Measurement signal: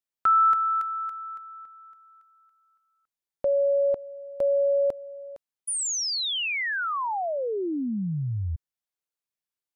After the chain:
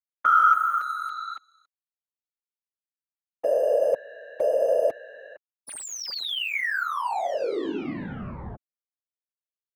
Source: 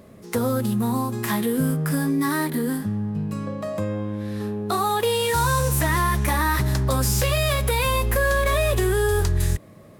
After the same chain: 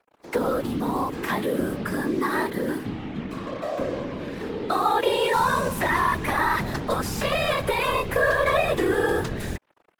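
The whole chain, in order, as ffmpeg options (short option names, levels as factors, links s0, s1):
-filter_complex "[0:a]acrusher=bits=5:mix=0:aa=0.5,afftfilt=real='hypot(re,im)*cos(2*PI*random(0))':imag='hypot(re,im)*sin(2*PI*random(1))':win_size=512:overlap=0.75,acrossover=split=260 3800:gain=0.251 1 0.251[s0][s1][s2];[s0][s1][s2]amix=inputs=3:normalize=0,volume=2.24"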